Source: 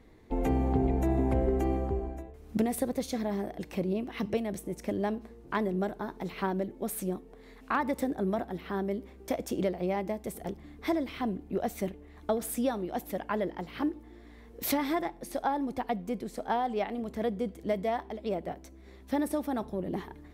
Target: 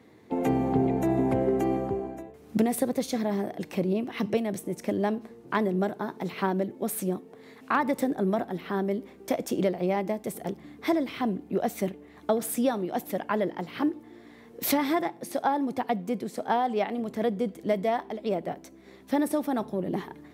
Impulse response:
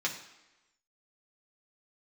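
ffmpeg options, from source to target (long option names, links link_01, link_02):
-af "highpass=frequency=110:width=0.5412,highpass=frequency=110:width=1.3066,volume=4dB"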